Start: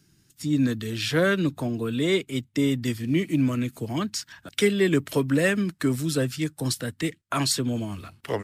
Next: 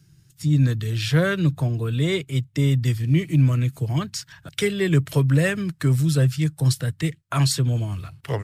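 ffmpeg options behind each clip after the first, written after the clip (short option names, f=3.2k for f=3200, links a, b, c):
-af "lowshelf=f=180:t=q:w=3:g=6.5"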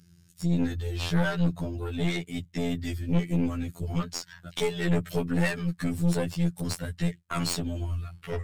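-af "afftfilt=real='hypot(re,im)*cos(PI*b)':imag='0':win_size=2048:overlap=0.75,aeval=exprs='0.668*sin(PI/2*2.51*val(0)/0.668)':c=same,aeval=exprs='(tanh(3.98*val(0)+0.65)-tanh(0.65))/3.98':c=same,volume=-7dB"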